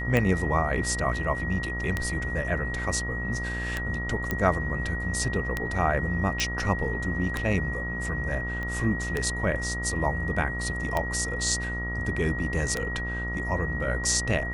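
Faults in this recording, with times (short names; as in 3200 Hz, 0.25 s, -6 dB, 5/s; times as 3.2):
buzz 60 Hz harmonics 24 -33 dBFS
tick 33 1/3 rpm -12 dBFS
tone 1900 Hz -32 dBFS
4.31 pop -13 dBFS
6.4 pop
8.63 pop -22 dBFS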